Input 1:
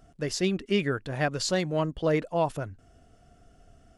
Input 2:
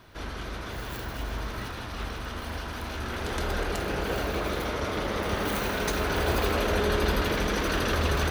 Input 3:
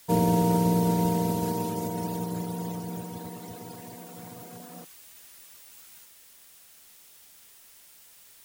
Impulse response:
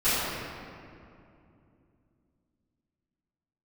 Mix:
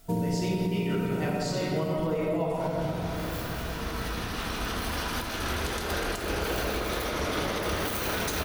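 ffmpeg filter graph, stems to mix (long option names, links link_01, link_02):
-filter_complex "[0:a]bandreject=frequency=1700:width=5.8,volume=-7.5dB,asplit=3[link_01][link_02][link_03];[link_02]volume=-5dB[link_04];[1:a]highshelf=frequency=4200:gain=9,adelay=2400,volume=2dB,asplit=2[link_05][link_06];[link_06]volume=-19.5dB[link_07];[2:a]lowshelf=frequency=450:gain=10,volume=-7.5dB[link_08];[link_03]apad=whole_len=472252[link_09];[link_05][link_09]sidechaincompress=threshold=-51dB:ratio=8:attack=16:release=1470[link_10];[3:a]atrim=start_sample=2205[link_11];[link_04][link_07]amix=inputs=2:normalize=0[link_12];[link_12][link_11]afir=irnorm=-1:irlink=0[link_13];[link_01][link_10][link_08][link_13]amix=inputs=4:normalize=0,alimiter=limit=-19.5dB:level=0:latency=1:release=307"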